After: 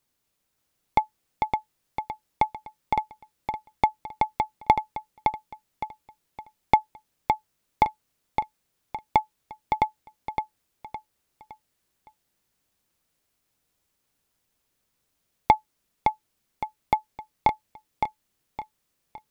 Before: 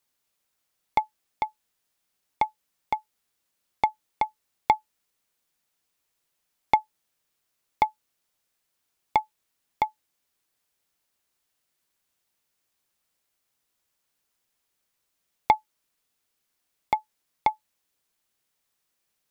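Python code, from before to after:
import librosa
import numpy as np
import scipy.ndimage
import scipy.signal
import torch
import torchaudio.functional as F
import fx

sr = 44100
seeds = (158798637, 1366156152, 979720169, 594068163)

p1 = fx.low_shelf(x, sr, hz=390.0, db=9.5)
y = p1 + fx.echo_feedback(p1, sr, ms=563, feedback_pct=36, wet_db=-5.0, dry=0)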